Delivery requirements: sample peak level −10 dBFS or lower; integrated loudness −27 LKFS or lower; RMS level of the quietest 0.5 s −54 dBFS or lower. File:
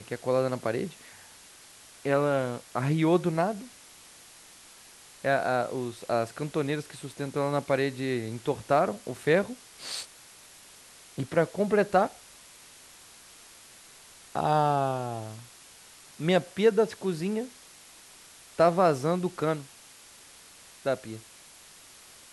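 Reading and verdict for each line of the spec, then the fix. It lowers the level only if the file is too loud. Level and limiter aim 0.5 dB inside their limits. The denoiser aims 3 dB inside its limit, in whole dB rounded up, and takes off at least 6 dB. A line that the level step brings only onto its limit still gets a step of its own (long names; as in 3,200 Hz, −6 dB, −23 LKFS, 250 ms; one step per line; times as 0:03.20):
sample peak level −9.5 dBFS: out of spec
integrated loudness −28.0 LKFS: in spec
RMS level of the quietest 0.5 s −52 dBFS: out of spec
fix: broadband denoise 6 dB, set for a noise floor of −52 dBFS
brickwall limiter −10.5 dBFS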